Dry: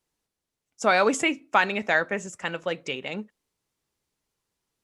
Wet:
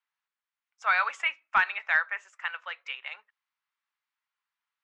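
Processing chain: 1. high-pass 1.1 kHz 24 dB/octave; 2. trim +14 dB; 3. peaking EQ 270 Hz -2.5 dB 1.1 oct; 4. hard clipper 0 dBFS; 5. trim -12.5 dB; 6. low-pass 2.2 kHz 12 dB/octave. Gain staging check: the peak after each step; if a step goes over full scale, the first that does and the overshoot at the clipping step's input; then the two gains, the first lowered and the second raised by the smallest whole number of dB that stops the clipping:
-8.5 dBFS, +5.5 dBFS, +5.5 dBFS, 0.0 dBFS, -12.5 dBFS, -12.0 dBFS; step 2, 5.5 dB; step 2 +8 dB, step 5 -6.5 dB

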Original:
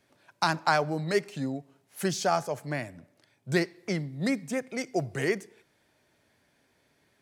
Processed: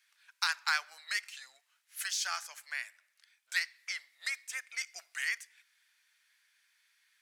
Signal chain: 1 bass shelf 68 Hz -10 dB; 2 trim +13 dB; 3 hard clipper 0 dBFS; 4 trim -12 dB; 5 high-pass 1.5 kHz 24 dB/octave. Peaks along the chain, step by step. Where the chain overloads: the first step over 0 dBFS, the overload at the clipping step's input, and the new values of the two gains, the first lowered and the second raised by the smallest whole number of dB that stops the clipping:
-10.0 dBFS, +3.0 dBFS, 0.0 dBFS, -12.0 dBFS, -13.0 dBFS; step 2, 3.0 dB; step 2 +10 dB, step 4 -9 dB

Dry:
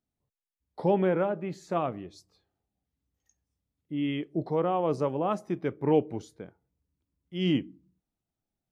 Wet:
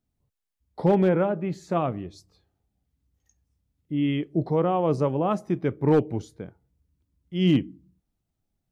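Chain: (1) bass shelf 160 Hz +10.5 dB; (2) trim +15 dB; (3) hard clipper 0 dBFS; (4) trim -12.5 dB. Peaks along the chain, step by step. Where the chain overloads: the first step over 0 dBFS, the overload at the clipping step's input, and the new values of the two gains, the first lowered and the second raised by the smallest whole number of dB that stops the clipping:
-10.0 dBFS, +5.0 dBFS, 0.0 dBFS, -12.5 dBFS; step 2, 5.0 dB; step 2 +10 dB, step 4 -7.5 dB

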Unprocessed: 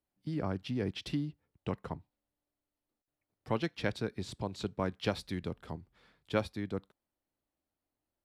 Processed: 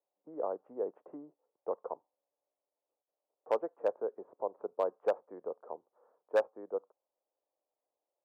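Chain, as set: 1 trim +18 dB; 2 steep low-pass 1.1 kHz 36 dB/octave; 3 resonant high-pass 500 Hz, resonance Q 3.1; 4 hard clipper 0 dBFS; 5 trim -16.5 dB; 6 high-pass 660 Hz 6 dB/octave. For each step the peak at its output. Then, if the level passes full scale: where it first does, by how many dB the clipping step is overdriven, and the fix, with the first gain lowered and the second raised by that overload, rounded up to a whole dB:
+3.5 dBFS, +1.0 dBFS, +5.0 dBFS, 0.0 dBFS, -16.5 dBFS, -16.0 dBFS; step 1, 5.0 dB; step 1 +13 dB, step 5 -11.5 dB

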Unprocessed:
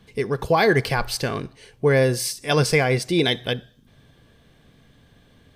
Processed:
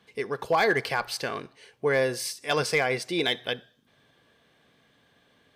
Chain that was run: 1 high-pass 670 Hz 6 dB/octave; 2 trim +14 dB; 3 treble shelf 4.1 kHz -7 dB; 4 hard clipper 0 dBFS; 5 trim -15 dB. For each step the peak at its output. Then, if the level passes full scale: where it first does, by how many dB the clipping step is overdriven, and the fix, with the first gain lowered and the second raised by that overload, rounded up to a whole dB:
-7.5 dBFS, +6.5 dBFS, +5.0 dBFS, 0.0 dBFS, -15.0 dBFS; step 2, 5.0 dB; step 2 +9 dB, step 5 -10 dB

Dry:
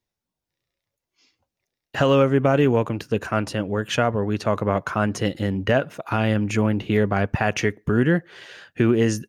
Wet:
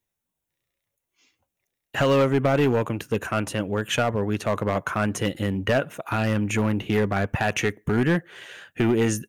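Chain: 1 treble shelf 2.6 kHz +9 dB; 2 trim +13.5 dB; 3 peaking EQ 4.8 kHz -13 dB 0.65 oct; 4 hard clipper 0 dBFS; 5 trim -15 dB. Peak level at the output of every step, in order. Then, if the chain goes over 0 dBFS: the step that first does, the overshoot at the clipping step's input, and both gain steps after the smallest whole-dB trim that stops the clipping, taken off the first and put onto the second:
-5.0 dBFS, +8.5 dBFS, +8.0 dBFS, 0.0 dBFS, -15.0 dBFS; step 2, 8.0 dB; step 2 +5.5 dB, step 5 -7 dB

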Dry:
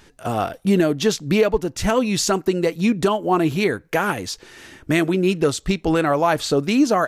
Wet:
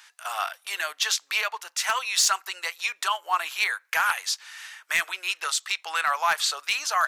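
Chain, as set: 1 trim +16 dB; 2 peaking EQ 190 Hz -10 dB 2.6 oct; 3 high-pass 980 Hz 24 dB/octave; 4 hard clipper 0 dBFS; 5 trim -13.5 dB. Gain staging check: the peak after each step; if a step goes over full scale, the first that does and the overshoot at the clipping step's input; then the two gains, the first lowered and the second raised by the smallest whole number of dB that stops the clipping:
+9.5 dBFS, +9.0 dBFS, +9.0 dBFS, 0.0 dBFS, -13.5 dBFS; step 1, 9.0 dB; step 1 +7 dB, step 5 -4.5 dB

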